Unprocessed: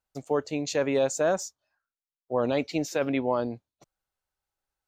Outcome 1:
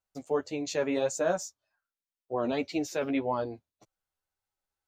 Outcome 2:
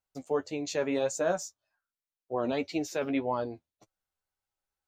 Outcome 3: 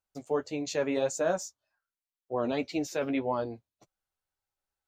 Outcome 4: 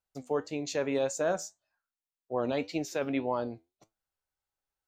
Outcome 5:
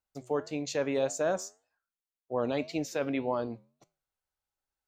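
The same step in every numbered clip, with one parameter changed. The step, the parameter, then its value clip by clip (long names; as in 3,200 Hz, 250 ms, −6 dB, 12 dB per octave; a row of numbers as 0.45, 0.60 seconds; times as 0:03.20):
flanger, regen: +4, +26, −23, +72, −84%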